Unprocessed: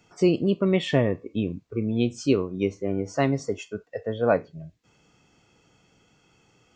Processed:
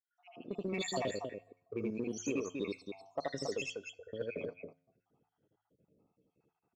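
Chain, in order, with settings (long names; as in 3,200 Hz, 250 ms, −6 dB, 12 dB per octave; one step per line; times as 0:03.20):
time-frequency cells dropped at random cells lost 72%
low-pass that shuts in the quiet parts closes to 440 Hz, open at −23.5 dBFS
RIAA equalisation recording
notch filter 2,100 Hz, Q 17
hum removal 52.57 Hz, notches 3
downward compressor 4 to 1, threshold −34 dBFS, peak gain reduction 12 dB
on a send: loudspeakers that aren't time-aligned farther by 27 metres −1 dB, 94 metres −6 dB
on the sum: automatic gain control gain up to 8.5 dB
tuned comb filter 89 Hz, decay 0.73 s, harmonics all, mix 30%
in parallel at −11 dB: hard clipping −28.5 dBFS, distortion −9 dB
on the sum: level −8.5 dB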